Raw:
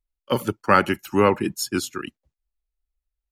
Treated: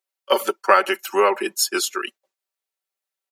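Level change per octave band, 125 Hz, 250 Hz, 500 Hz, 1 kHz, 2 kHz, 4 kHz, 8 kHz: under -20 dB, -6.5 dB, +2.0 dB, +2.5 dB, +2.5 dB, +7.0 dB, +7.5 dB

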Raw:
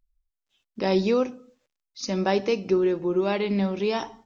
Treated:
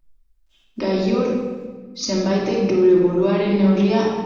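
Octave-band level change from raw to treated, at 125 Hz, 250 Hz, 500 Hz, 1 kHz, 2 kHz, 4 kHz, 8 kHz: +9.0 dB, +8.5 dB, +5.5 dB, +3.0 dB, +2.5 dB, +4.5 dB, no reading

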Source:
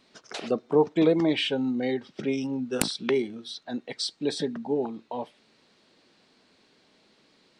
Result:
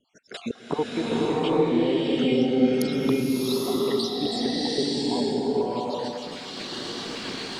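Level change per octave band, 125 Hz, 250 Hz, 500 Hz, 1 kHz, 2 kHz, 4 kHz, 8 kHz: +4.5 dB, +4.5 dB, +3.0 dB, +6.0 dB, +1.0 dB, +4.0 dB, 0.0 dB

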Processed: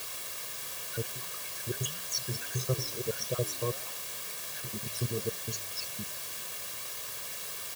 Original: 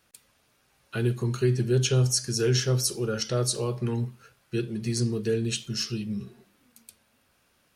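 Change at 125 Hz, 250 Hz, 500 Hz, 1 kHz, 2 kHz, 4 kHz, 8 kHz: -11.5 dB, -14.0 dB, -9.0 dB, -2.0 dB, -2.0 dB, -4.5 dB, -3.5 dB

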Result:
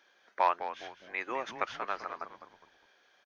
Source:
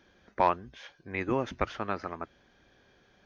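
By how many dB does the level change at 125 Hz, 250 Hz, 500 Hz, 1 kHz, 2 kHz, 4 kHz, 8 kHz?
-22.0 dB, -13.5 dB, -5.5 dB, -1.0 dB, 0.0 dB, +0.5 dB, no reading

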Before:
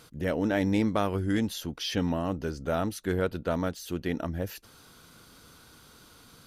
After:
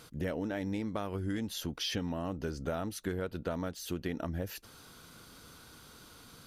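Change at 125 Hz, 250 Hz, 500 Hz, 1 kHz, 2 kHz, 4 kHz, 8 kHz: -6.0 dB, -7.5 dB, -7.0 dB, -8.0 dB, -7.0 dB, -2.5 dB, -2.0 dB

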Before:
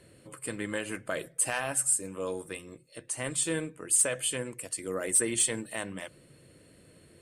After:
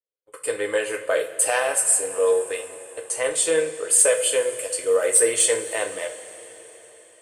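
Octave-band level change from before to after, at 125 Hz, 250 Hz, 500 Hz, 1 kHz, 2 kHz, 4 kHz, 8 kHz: no reading, -1.5 dB, +14.5 dB, +9.5 dB, +8.5 dB, +8.0 dB, +8.0 dB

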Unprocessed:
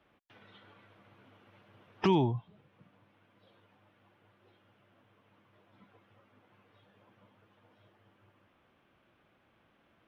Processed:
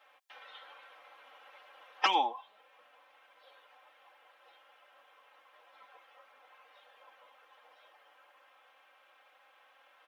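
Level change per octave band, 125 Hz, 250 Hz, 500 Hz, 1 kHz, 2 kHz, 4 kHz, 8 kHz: under -35 dB, -17.5 dB, -10.5 dB, +6.5 dB, +8.0 dB, +9.0 dB, no reading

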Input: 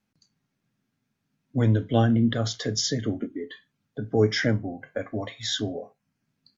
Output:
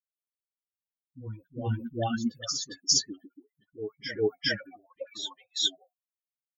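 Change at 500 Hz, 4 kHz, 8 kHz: -7.0 dB, +1.5 dB, no reading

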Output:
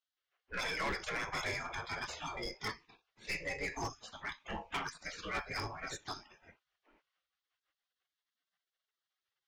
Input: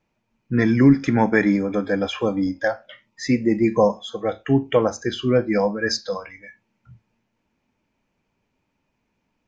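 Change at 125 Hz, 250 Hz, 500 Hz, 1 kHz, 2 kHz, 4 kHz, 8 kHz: -24.0 dB, -31.0 dB, -24.5 dB, -13.0 dB, -10.5 dB, -10.5 dB, no reading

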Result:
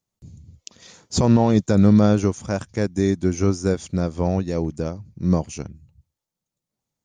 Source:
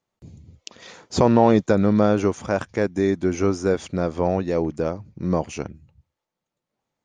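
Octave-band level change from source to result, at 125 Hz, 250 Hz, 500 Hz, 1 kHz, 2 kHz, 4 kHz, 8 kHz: +5.0 dB, +2.5 dB, -3.0 dB, -4.5 dB, -3.5 dB, +2.0 dB, +4.5 dB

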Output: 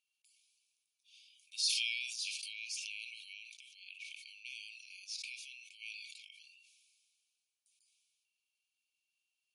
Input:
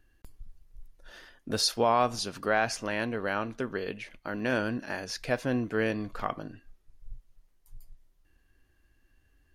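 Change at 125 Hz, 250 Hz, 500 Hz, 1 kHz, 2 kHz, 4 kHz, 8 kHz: under -40 dB, under -40 dB, under -40 dB, under -40 dB, -10.5 dB, -2.5 dB, -3.5 dB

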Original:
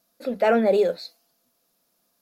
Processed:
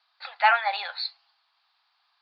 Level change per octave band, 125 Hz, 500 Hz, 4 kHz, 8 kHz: under -40 dB, -17.0 dB, +8.0 dB, no reading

